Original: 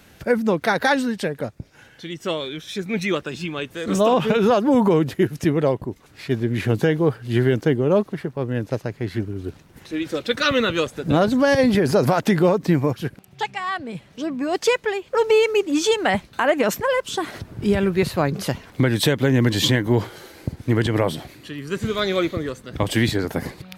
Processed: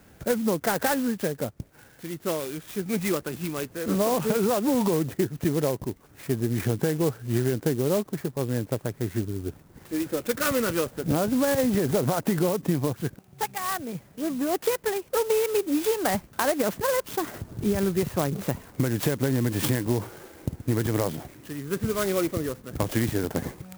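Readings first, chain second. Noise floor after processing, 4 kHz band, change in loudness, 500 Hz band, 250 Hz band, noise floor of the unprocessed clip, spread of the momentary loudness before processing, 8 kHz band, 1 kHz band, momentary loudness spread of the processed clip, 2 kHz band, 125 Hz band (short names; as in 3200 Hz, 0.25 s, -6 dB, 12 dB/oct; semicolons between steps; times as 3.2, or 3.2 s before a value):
-54 dBFS, -10.0 dB, -5.5 dB, -6.0 dB, -5.0 dB, -51 dBFS, 13 LU, +0.5 dB, -6.5 dB, 10 LU, -9.0 dB, -5.0 dB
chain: high shelf 3900 Hz -11.5 dB; compressor, threshold -18 dBFS, peak gain reduction 6 dB; clock jitter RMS 0.073 ms; gain -2 dB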